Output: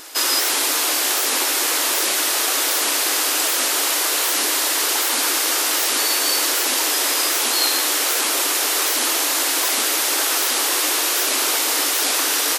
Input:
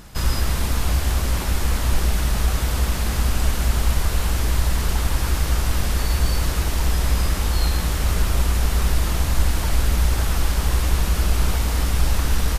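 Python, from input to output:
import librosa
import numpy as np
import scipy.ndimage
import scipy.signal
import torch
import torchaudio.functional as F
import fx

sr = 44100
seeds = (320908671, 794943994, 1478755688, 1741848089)

y = fx.brickwall_highpass(x, sr, low_hz=270.0)
y = fx.high_shelf(y, sr, hz=2100.0, db=10.0)
y = fx.record_warp(y, sr, rpm=78.0, depth_cents=250.0)
y = F.gain(torch.from_numpy(y), 4.0).numpy()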